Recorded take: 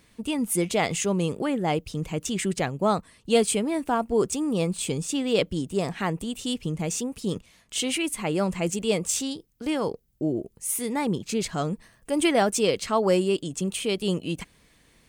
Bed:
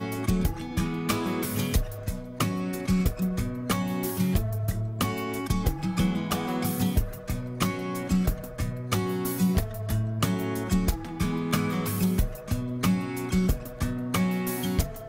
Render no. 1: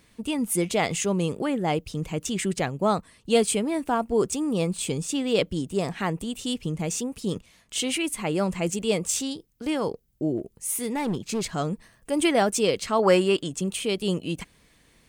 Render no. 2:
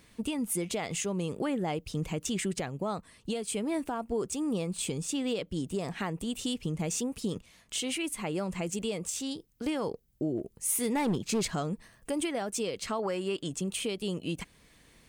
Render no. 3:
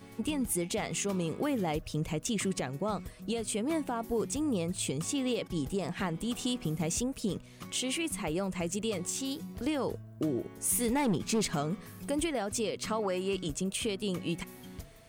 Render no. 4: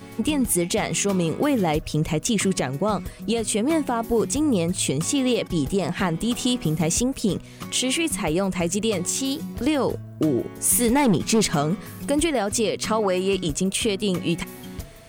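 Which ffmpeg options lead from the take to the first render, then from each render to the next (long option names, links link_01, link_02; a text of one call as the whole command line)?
ffmpeg -i in.wav -filter_complex "[0:a]asettb=1/sr,asplit=3[link_01][link_02][link_03];[link_01]atrim=end=10.374[link_04];[link_02]atrim=start=10.37:end=11.52,asetpts=PTS-STARTPTS,afade=type=in:duration=0.004:curve=qsin,afade=type=out:start_time=1.146:duration=0.004:curve=qsin,volume=22dB,asoftclip=hard,volume=-22dB[link_05];[link_03]atrim=start=11.516[link_06];[link_04][link_05]acrossfade=duration=0.004:curve1=hsin:curve2=qsin[link_07];[link_07][link_06]acrossfade=duration=0.004:curve1=qsin:curve2=hsin,asettb=1/sr,asplit=3[link_08][link_09][link_10];[link_08]atrim=end=12.994[link_11];[link_09]atrim=start=12.99:end=13.5,asetpts=PTS-STARTPTS,afade=type=in:duration=0.004:curve=qsin,afade=type=out:start_time=0.506:duration=0.004:curve=qsin,equalizer=frequency=1500:width_type=o:width=2.2:gain=9.5[link_12];[link_10]atrim=start=13.496[link_13];[link_11][link_12]acrossfade=duration=0.004:curve1=hsin:curve2=qsin[link_14];[link_14][link_13]acrossfade=duration=0.004:curve1=qsin:curve2=hsin" out.wav
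ffmpeg -i in.wav -af "acompressor=threshold=-24dB:ratio=6,alimiter=limit=-22dB:level=0:latency=1:release=479" out.wav
ffmpeg -i in.wav -i bed.wav -filter_complex "[1:a]volume=-19.5dB[link_01];[0:a][link_01]amix=inputs=2:normalize=0" out.wav
ffmpeg -i in.wav -af "volume=10dB" out.wav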